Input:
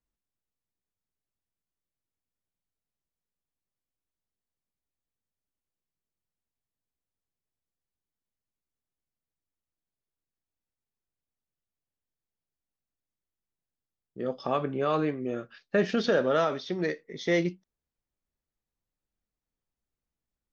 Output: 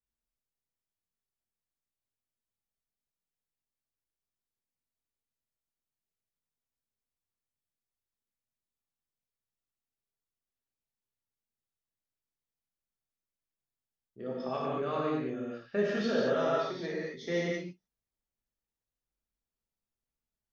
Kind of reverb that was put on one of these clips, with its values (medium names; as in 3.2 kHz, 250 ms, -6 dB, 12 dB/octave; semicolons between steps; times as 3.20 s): gated-style reverb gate 250 ms flat, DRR -5 dB; trim -10.5 dB